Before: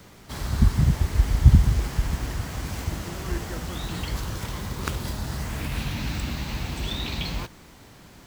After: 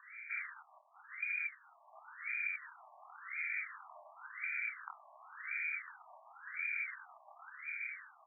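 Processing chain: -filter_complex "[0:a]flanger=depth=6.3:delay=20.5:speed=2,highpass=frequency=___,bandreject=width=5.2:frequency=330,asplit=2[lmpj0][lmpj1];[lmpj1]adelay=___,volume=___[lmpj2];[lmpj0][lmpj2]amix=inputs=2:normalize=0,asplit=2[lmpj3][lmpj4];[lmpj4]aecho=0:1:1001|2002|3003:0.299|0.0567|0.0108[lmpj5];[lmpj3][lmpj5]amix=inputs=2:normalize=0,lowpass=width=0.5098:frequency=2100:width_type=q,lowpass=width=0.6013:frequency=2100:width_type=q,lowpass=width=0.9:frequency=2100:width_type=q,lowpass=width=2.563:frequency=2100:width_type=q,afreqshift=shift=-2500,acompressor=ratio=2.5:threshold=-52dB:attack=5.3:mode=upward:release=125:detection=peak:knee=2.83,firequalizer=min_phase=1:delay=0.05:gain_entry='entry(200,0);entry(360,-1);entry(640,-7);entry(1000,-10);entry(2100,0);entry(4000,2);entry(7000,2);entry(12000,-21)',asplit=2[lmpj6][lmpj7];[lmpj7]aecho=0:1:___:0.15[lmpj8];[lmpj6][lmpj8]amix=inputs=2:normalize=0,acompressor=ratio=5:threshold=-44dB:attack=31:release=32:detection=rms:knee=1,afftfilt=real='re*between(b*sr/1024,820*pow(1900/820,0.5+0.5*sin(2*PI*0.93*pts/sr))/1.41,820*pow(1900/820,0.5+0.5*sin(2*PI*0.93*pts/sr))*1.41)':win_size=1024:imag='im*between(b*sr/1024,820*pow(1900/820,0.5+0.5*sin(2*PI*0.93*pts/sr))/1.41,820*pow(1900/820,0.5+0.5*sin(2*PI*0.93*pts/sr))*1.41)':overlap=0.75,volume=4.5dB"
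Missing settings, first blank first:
130, 26, -5.5dB, 155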